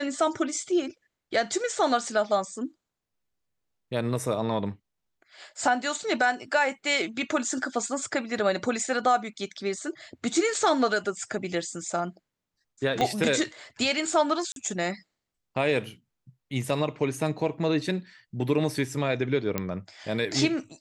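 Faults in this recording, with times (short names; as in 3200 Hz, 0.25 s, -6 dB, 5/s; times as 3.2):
13.01 pop -13 dBFS
14.52–14.56 gap 42 ms
19.58 pop -12 dBFS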